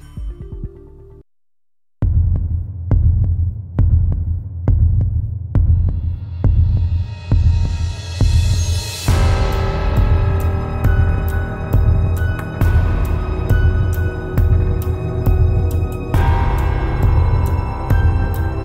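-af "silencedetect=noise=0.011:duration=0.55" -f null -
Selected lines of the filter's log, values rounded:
silence_start: 1.21
silence_end: 2.02 | silence_duration: 0.81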